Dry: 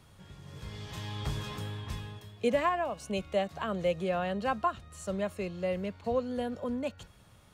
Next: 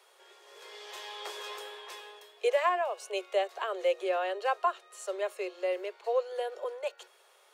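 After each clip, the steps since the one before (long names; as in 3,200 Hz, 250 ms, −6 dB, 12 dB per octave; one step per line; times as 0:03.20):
Chebyshev high-pass filter 360 Hz, order 10
level +2 dB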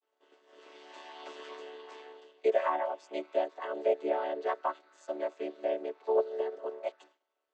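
channel vocoder with a chord as carrier major triad, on D3
downward expander −56 dBFS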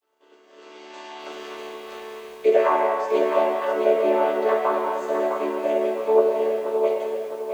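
convolution reverb RT60 2.1 s, pre-delay 5 ms, DRR −1.5 dB
feedback echo at a low word length 659 ms, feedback 35%, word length 9 bits, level −6 dB
level +7 dB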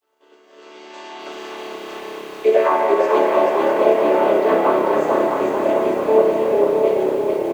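echo with shifted repeats 441 ms, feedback 58%, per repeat −33 Hz, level −3.5 dB
level +3 dB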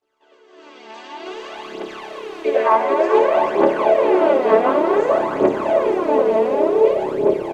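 phase shifter 0.55 Hz, delay 4.6 ms, feedback 62%
high-frequency loss of the air 54 metres
level −1.5 dB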